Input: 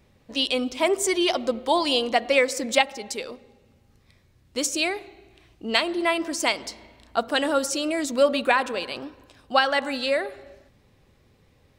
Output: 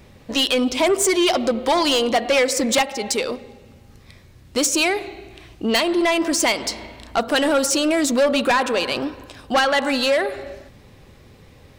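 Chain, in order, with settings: in parallel at +2.5 dB: compression, threshold -29 dBFS, peak gain reduction 15 dB; on the sum: saturation -17.5 dBFS, distortion -10 dB; trim +5 dB

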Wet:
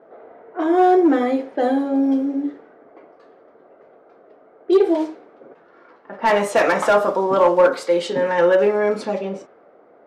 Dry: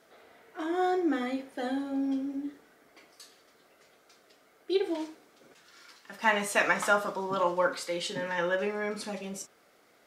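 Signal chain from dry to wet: overload inside the chain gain 23.5 dB; peaking EQ 520 Hz +14.5 dB 2.8 oct; level-controlled noise filter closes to 1.2 kHz, open at -17 dBFS; trim +2 dB

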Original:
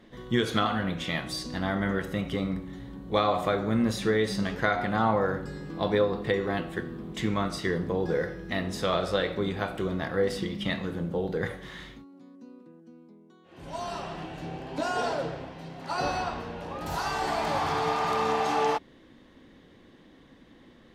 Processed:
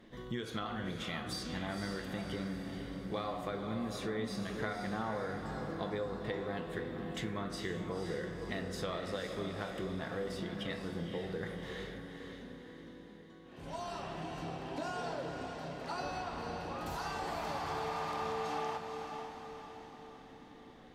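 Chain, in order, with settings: compression 3:1, threshold -35 dBFS, peak gain reduction 12 dB; on a send: echo that smears into a reverb 507 ms, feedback 52%, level -6 dB; on the sum: trim -3.5 dB

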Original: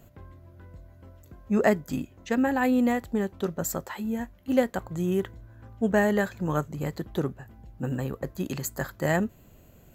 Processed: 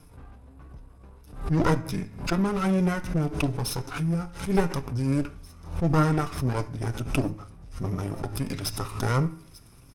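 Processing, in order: comb filter that takes the minimum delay 0.6 ms; de-hum 142.2 Hz, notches 26; dynamic bell 1.6 kHz, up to -4 dB, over -43 dBFS, Q 1.8; flange 1.5 Hz, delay 4.8 ms, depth 1.9 ms, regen +61%; pitch shift -5 st; feedback echo behind a high-pass 891 ms, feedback 74%, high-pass 3.4 kHz, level -19 dB; on a send at -12 dB: reverberation RT60 0.50 s, pre-delay 3 ms; on the sum: swell ahead of each attack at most 110 dB/s; trim +7 dB

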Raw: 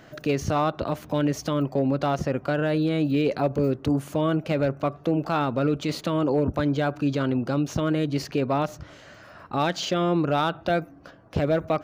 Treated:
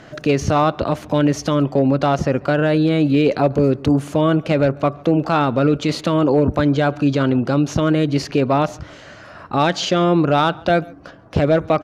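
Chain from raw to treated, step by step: Bessel low-pass 9.5 kHz, order 4; echo from a far wall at 24 m, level -25 dB; trim +7.5 dB

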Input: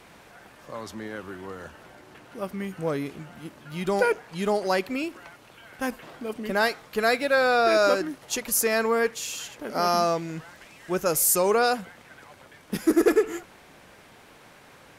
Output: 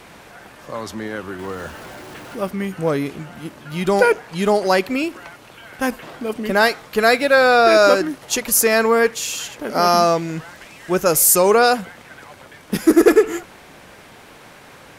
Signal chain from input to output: 1.39–2.49 s: jump at every zero crossing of -45 dBFS; trim +8 dB

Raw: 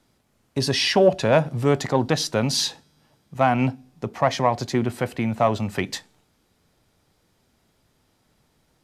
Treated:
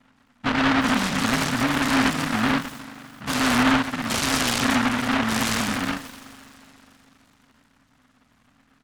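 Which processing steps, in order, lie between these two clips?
every event in the spectrogram widened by 240 ms; bass shelf 370 Hz -8.5 dB; resampled via 8 kHz; FFT filter 180 Hz 0 dB, 270 Hz +14 dB, 390 Hz -28 dB, 1.1 kHz -1 dB, 1.9 kHz -19 dB; compression 1.5:1, threshold -33 dBFS, peak gain reduction 8 dB; repeats whose band climbs or falls 144 ms, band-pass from 1.2 kHz, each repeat 0.7 oct, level -3.5 dB; spring tank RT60 3.8 s, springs 41 ms, chirp 30 ms, DRR 13 dB; spectral gate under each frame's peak -30 dB strong; delay time shaken by noise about 1.2 kHz, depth 0.49 ms; trim +2.5 dB

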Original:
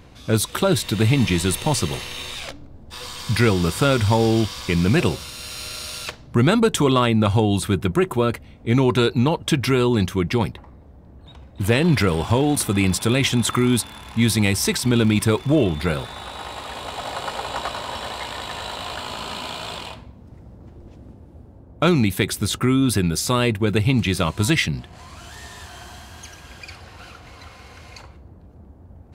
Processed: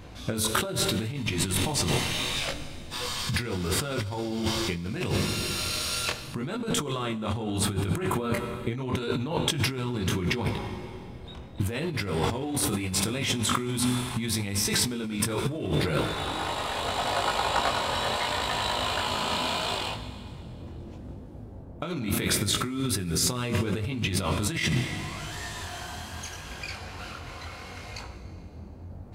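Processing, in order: Schroeder reverb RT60 2.3 s, combs from 32 ms, DRR 11 dB; chorus 0.75 Hz, delay 19.5 ms, depth 4.5 ms; compressor with a negative ratio -28 dBFS, ratio -1

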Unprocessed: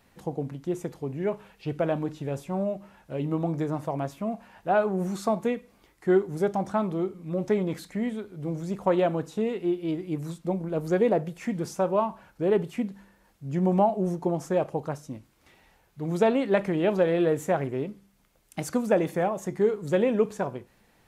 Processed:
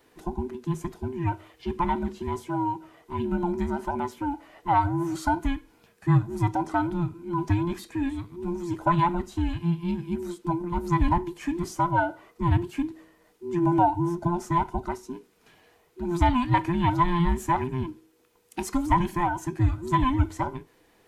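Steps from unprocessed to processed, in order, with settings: every band turned upside down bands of 500 Hz; trim +1 dB

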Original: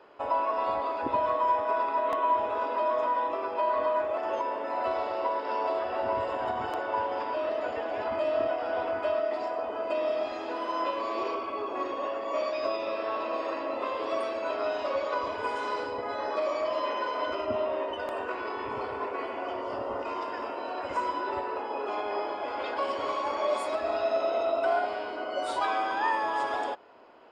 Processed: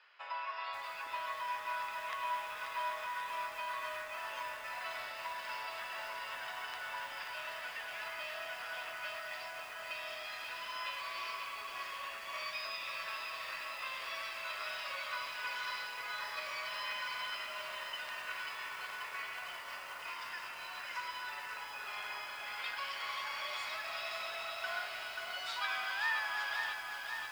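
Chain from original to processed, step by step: Chebyshev band-pass 1.8–5.4 kHz, order 2; bit-crushed delay 535 ms, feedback 80%, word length 9-bit, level -5.5 dB; trim +1.5 dB

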